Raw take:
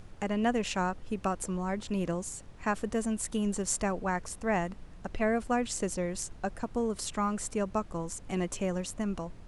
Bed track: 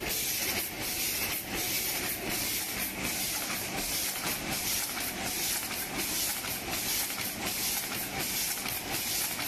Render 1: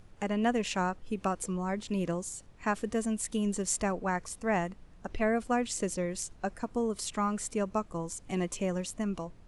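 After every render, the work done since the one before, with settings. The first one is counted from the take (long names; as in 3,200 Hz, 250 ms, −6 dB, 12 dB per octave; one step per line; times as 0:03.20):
noise reduction from a noise print 6 dB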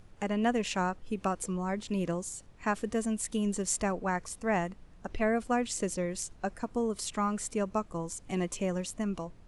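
no processing that can be heard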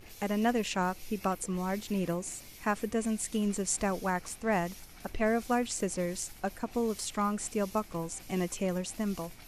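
mix in bed track −20 dB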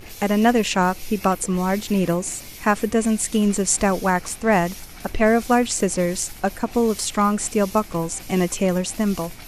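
level +11.5 dB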